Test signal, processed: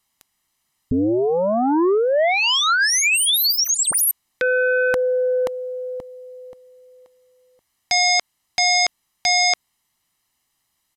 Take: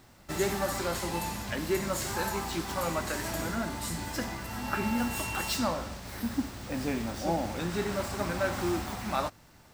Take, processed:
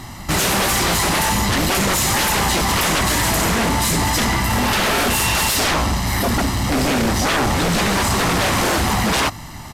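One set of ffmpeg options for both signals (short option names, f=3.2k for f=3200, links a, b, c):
-af "aecho=1:1:1:0.61,aeval=exprs='0.188*sin(PI/2*7.08*val(0)/0.188)':c=same,aresample=32000,aresample=44100"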